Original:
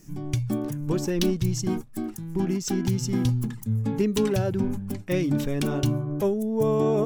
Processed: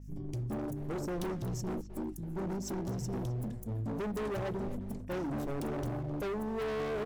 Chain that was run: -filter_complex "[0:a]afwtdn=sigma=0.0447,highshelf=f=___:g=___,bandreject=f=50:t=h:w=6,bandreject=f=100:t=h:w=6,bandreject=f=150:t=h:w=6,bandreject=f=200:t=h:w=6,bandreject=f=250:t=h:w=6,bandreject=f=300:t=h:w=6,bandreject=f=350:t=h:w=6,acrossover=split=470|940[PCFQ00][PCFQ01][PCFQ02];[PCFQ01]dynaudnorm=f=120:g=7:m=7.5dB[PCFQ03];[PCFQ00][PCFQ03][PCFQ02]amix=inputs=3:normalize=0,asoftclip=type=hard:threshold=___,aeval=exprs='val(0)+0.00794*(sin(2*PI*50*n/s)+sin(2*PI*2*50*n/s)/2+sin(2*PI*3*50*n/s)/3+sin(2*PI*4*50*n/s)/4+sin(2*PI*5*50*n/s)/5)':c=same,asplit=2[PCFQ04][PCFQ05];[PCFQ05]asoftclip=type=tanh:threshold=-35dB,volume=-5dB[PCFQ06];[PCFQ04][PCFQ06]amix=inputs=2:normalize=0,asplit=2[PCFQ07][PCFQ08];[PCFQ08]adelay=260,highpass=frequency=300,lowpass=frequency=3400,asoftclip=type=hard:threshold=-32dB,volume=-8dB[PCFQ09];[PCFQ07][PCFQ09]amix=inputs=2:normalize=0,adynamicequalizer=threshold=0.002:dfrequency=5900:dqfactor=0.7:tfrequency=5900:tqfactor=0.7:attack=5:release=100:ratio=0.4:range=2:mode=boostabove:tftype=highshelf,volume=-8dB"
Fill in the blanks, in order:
2800, 9, -27.5dB